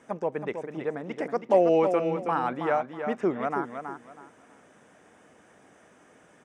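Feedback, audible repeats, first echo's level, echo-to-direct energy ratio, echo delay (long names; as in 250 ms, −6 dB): 25%, 3, −7.5 dB, −7.0 dB, 323 ms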